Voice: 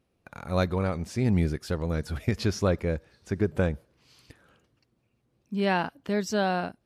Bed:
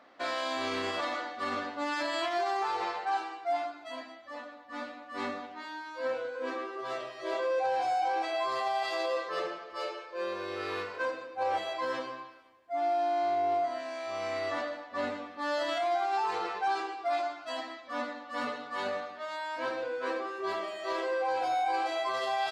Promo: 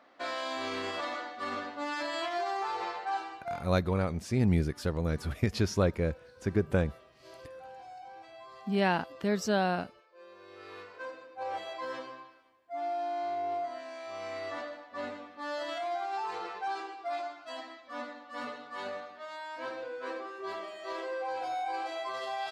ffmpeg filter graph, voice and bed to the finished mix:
ffmpeg -i stem1.wav -i stem2.wav -filter_complex "[0:a]adelay=3150,volume=-2dB[link_01];[1:a]volume=11dB,afade=type=out:start_time=3.38:duration=0.29:silence=0.158489,afade=type=in:start_time=10.27:duration=1.45:silence=0.211349[link_02];[link_01][link_02]amix=inputs=2:normalize=0" out.wav

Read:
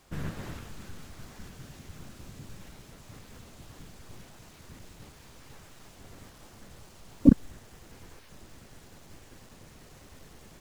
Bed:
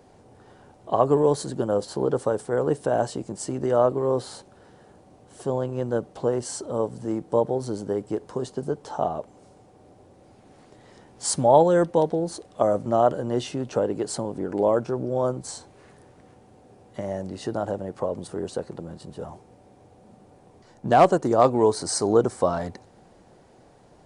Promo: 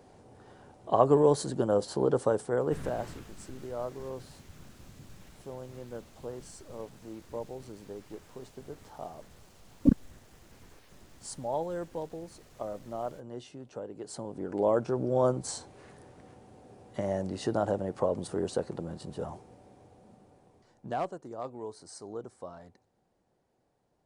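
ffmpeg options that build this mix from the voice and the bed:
ffmpeg -i stem1.wav -i stem2.wav -filter_complex "[0:a]adelay=2600,volume=-5dB[link_01];[1:a]volume=13dB,afade=type=out:start_time=2.36:duration=0.75:silence=0.199526,afade=type=in:start_time=13.93:duration=1.33:silence=0.16788,afade=type=out:start_time=19.35:duration=1.77:silence=0.1[link_02];[link_01][link_02]amix=inputs=2:normalize=0" out.wav

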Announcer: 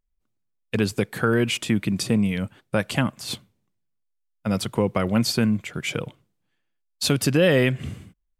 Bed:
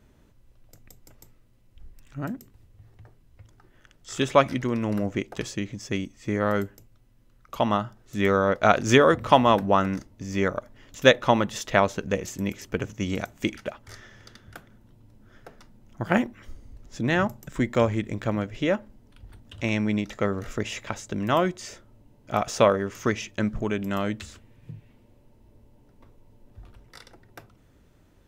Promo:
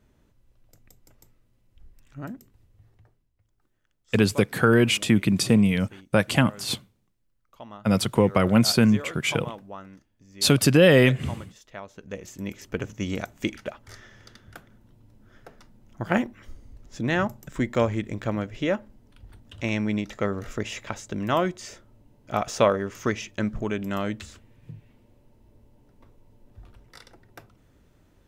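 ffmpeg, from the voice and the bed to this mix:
ffmpeg -i stem1.wav -i stem2.wav -filter_complex "[0:a]adelay=3400,volume=2.5dB[link_01];[1:a]volume=14dB,afade=type=out:start_time=2.84:duration=0.49:silence=0.177828,afade=type=in:start_time=11.87:duration=0.98:silence=0.11885[link_02];[link_01][link_02]amix=inputs=2:normalize=0" out.wav

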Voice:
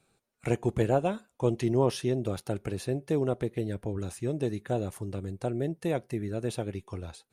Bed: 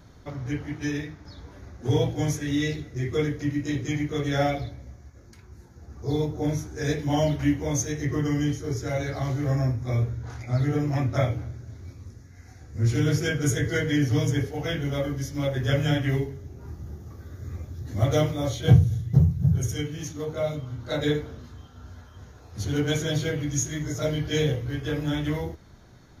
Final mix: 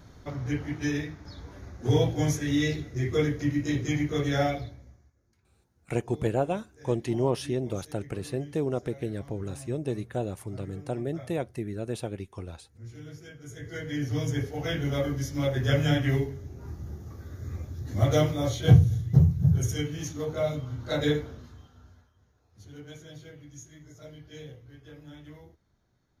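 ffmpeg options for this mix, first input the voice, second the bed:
ffmpeg -i stem1.wav -i stem2.wav -filter_complex "[0:a]adelay=5450,volume=-1dB[link_01];[1:a]volume=20.5dB,afade=type=out:start_time=4.21:duration=0.95:silence=0.0891251,afade=type=in:start_time=13.48:duration=1.41:silence=0.0944061,afade=type=out:start_time=21.05:duration=1.09:silence=0.105925[link_02];[link_01][link_02]amix=inputs=2:normalize=0" out.wav

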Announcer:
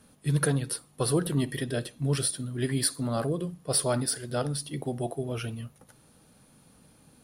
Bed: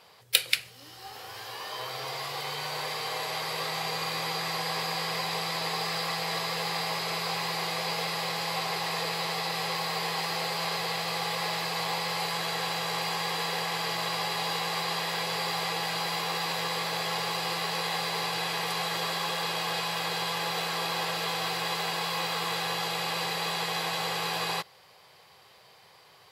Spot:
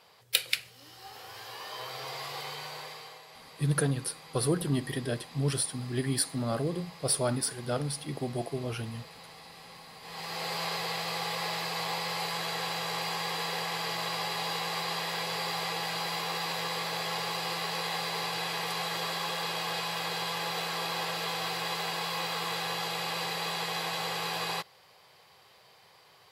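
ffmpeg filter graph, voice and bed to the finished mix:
ffmpeg -i stem1.wav -i stem2.wav -filter_complex "[0:a]adelay=3350,volume=-2dB[link_01];[1:a]volume=12.5dB,afade=type=out:start_time=2.36:duration=0.86:silence=0.177828,afade=type=in:start_time=10.01:duration=0.52:silence=0.158489[link_02];[link_01][link_02]amix=inputs=2:normalize=0" out.wav

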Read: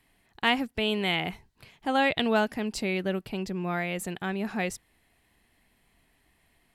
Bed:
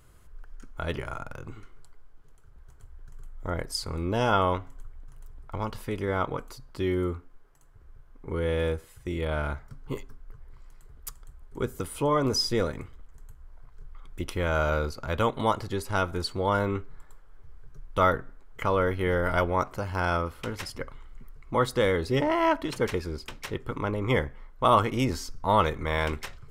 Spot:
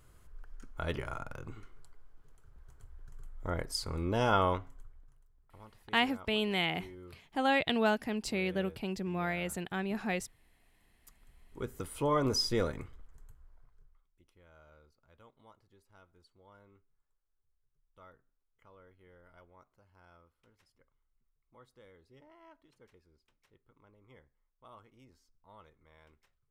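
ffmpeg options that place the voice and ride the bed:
ffmpeg -i stem1.wav -i stem2.wav -filter_complex "[0:a]adelay=5500,volume=-4dB[link_01];[1:a]volume=14dB,afade=type=out:start_time=4.46:duration=0.8:silence=0.11885,afade=type=in:start_time=11.02:duration=1.15:silence=0.125893,afade=type=out:start_time=12.92:duration=1.14:silence=0.0316228[link_02];[link_01][link_02]amix=inputs=2:normalize=0" out.wav

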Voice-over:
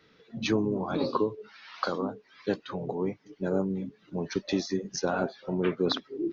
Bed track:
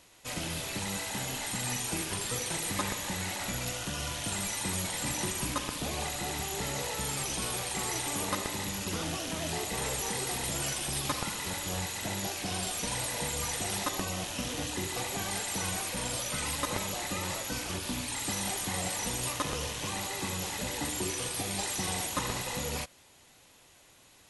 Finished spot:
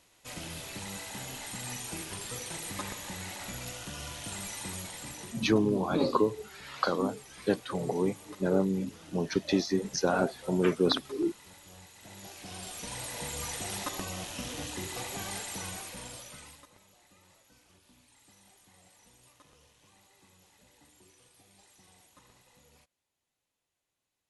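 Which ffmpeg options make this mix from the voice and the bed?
ffmpeg -i stem1.wav -i stem2.wav -filter_complex "[0:a]adelay=5000,volume=1.5dB[link_01];[1:a]volume=9dB,afade=type=out:start_time=4.63:duration=0.91:silence=0.237137,afade=type=in:start_time=11.96:duration=1.44:silence=0.188365,afade=type=out:start_time=15.3:duration=1.39:silence=0.0630957[link_02];[link_01][link_02]amix=inputs=2:normalize=0" out.wav

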